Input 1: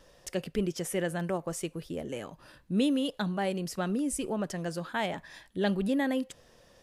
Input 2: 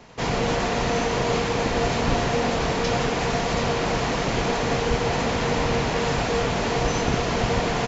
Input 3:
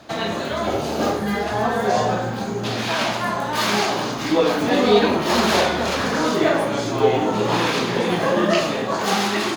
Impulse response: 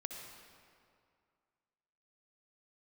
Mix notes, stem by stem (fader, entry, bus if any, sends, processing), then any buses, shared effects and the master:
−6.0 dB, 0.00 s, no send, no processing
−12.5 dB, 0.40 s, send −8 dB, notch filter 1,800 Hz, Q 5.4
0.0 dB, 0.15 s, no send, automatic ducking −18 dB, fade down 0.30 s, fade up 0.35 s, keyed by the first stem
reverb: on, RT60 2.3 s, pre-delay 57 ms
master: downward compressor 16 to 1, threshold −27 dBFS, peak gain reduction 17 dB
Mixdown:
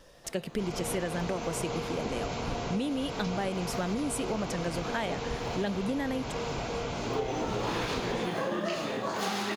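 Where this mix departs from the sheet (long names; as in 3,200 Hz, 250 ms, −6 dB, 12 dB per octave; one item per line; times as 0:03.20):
stem 1 −6.0 dB → +2.5 dB
stem 3 0.0 dB → −8.5 dB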